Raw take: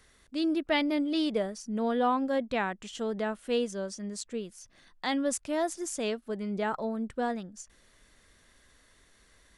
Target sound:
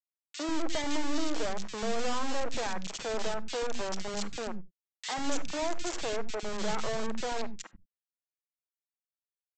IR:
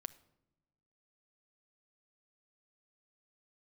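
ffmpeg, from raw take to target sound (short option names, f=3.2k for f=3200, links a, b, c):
-filter_complex "[0:a]highpass=190,asplit=2[a][b];[b]acompressor=threshold=-39dB:ratio=5,volume=-3dB[c];[a][c]amix=inputs=2:normalize=0,asoftclip=type=tanh:threshold=-26dB,aresample=16000,acrusher=bits=3:dc=4:mix=0:aa=0.000001,aresample=44100,acrossover=split=260|2100[d][e][f];[e]adelay=50[g];[d]adelay=140[h];[h][g][f]amix=inputs=3:normalize=0[i];[1:a]atrim=start_sample=2205,atrim=end_sample=4410[j];[i][j]afir=irnorm=-1:irlink=0,volume=7.5dB"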